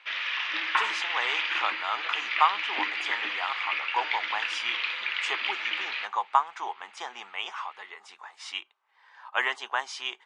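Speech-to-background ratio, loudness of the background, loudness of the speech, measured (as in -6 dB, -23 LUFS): -3.0 dB, -29.0 LUFS, -32.0 LUFS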